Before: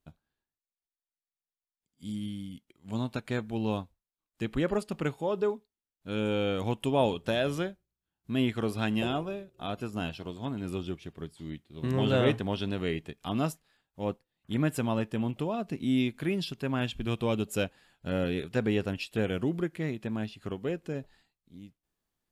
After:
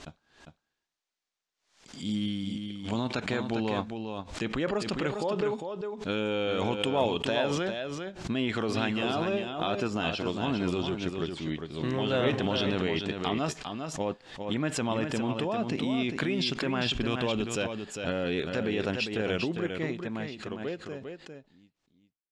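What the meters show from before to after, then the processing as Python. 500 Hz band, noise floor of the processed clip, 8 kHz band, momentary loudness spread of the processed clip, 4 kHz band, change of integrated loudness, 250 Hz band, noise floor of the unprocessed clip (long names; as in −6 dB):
+1.5 dB, −84 dBFS, +5.5 dB, 9 LU, +6.0 dB, +1.0 dB, +0.5 dB, below −85 dBFS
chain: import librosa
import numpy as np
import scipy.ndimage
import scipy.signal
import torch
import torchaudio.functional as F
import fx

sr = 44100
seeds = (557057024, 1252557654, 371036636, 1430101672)

p1 = fx.fade_out_tail(x, sr, length_s=5.52)
p2 = scipy.signal.sosfilt(scipy.signal.butter(4, 6900.0, 'lowpass', fs=sr, output='sos'), p1)
p3 = fx.low_shelf(p2, sr, hz=200.0, db=-11.0)
p4 = fx.over_compress(p3, sr, threshold_db=-38.0, ratio=-0.5)
p5 = p3 + F.gain(torch.from_numpy(p4), 2.0).numpy()
p6 = np.clip(p5, -10.0 ** (-14.5 / 20.0), 10.0 ** (-14.5 / 20.0))
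p7 = p6 + fx.echo_single(p6, sr, ms=402, db=-6.5, dry=0)
y = fx.pre_swell(p7, sr, db_per_s=110.0)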